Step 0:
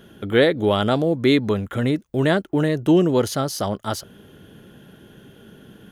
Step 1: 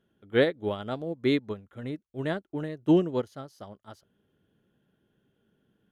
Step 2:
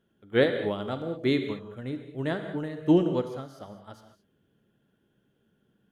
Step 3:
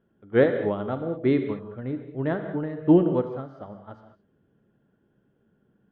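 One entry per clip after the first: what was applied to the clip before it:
high shelf 4700 Hz -7.5 dB; upward expander 2.5:1, over -26 dBFS; gain -4 dB
non-linear reverb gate 0.24 s flat, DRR 6.5 dB
LPF 1600 Hz 12 dB/oct; gain +3.5 dB

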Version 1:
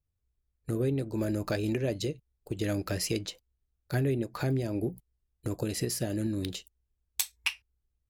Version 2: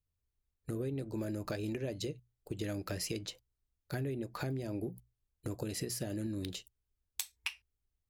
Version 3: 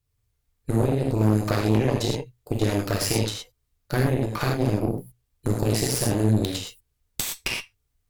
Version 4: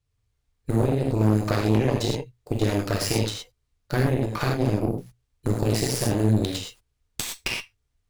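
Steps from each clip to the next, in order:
notches 60/120 Hz; compressor, threshold -30 dBFS, peak gain reduction 7.5 dB; gain -3.5 dB
non-linear reverb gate 0.14 s flat, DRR -3 dB; added harmonics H 6 -12 dB, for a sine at -16 dBFS; gain +7 dB
median filter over 3 samples

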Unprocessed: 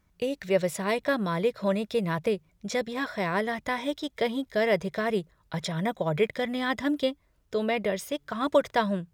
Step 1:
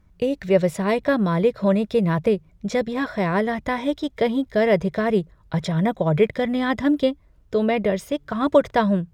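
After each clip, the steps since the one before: tilt -2 dB/oct; gain +4.5 dB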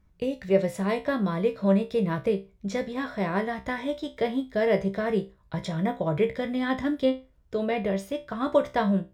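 resonator 65 Hz, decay 0.26 s, harmonics all, mix 80%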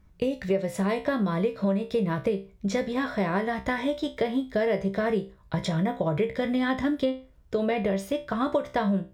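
compressor 6:1, threshold -27 dBFS, peak gain reduction 11.5 dB; gain +5 dB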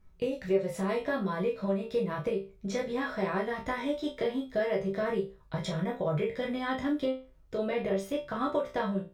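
reverb, pre-delay 6 ms, DRR -1.5 dB; gain -7.5 dB

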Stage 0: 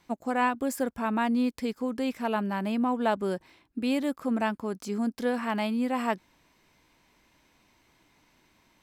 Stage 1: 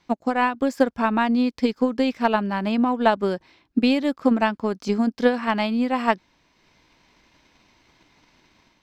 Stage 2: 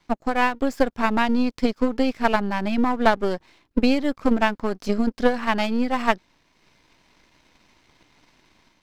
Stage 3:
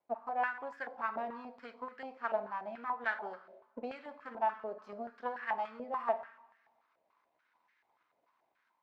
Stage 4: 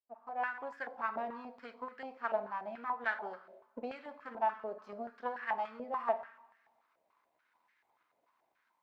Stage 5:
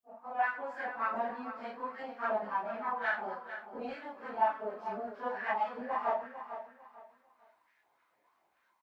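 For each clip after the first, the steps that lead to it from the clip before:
resonant high shelf 7200 Hz -11 dB, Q 1.5; transient shaper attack +9 dB, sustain -3 dB; AGC gain up to 5 dB
half-wave gain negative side -12 dB; gain +3 dB
two-slope reverb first 0.73 s, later 1.9 s, DRR 7 dB; stepped band-pass 6.9 Hz 610–1700 Hz; gain -7 dB
opening faded in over 0.58 s
phase scrambler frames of 0.1 s; on a send: feedback echo 0.448 s, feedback 28%, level -11 dB; on the sum: gain +3 dB

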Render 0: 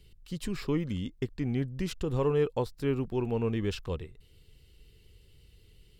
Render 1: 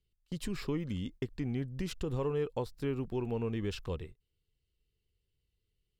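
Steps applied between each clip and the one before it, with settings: gate -45 dBFS, range -22 dB; compressor 2:1, threshold -31 dBFS, peak gain reduction 5.5 dB; gain -1.5 dB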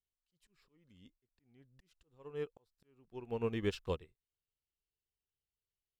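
low shelf 300 Hz -7.5 dB; auto swell 0.729 s; upward expander 2.5:1, over -49 dBFS; gain +7 dB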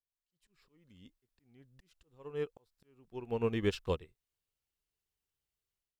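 AGC gain up to 12 dB; gain -8.5 dB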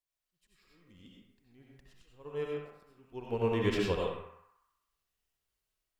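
narrowing echo 64 ms, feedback 69%, band-pass 1300 Hz, level -6 dB; reverb RT60 0.55 s, pre-delay 50 ms, DRR -2.5 dB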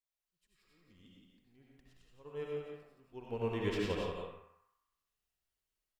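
echo 0.173 s -5 dB; gain -5.5 dB

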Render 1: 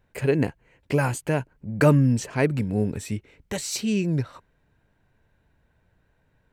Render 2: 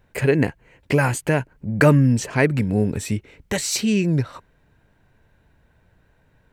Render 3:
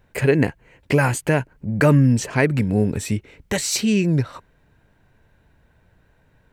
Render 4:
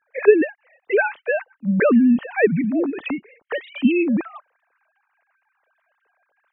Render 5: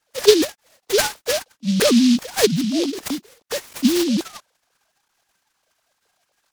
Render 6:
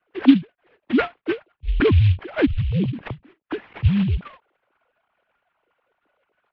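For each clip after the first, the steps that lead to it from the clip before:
dynamic EQ 1900 Hz, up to +5 dB, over -43 dBFS, Q 2.2; in parallel at -1 dB: compressor, threshold -26 dBFS, peak gain reduction 13 dB; on the sum: gain +1 dB
maximiser +6 dB; gain -5 dB
sine-wave speech
noise-modulated delay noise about 4000 Hz, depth 0.13 ms
formant sharpening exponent 1.5; mistuned SSB -150 Hz 170–3000 Hz; ending taper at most 330 dB/s

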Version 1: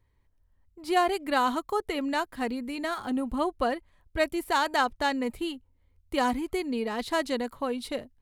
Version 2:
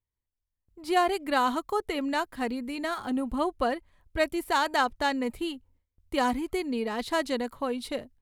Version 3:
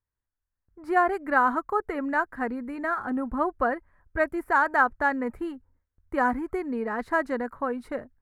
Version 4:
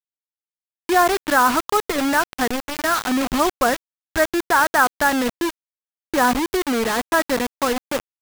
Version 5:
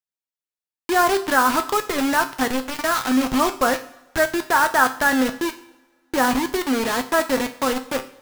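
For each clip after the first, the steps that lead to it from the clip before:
gate with hold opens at -55 dBFS
resonant high shelf 2300 Hz -13 dB, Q 3
in parallel at +2.5 dB: limiter -16.5 dBFS, peak gain reduction 7.5 dB; on the sum: bit-crush 4-bit
resonator 130 Hz, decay 0.3 s, harmonics all, mix 70%; two-slope reverb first 0.78 s, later 2.3 s, from -20 dB, DRR 13 dB; gain +6 dB

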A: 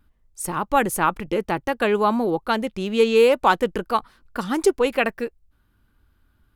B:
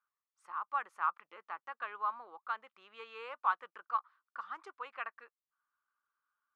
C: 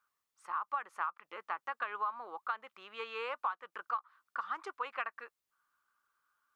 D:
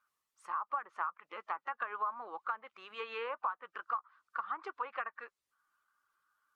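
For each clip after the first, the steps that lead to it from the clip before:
ladder band-pass 1300 Hz, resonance 65%; gain -7 dB
compressor 16:1, threshold -39 dBFS, peak gain reduction 15.5 dB; gain +7.5 dB
bin magnitudes rounded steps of 15 dB; treble ducked by the level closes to 1600 Hz, closed at -34 dBFS; gain +1 dB

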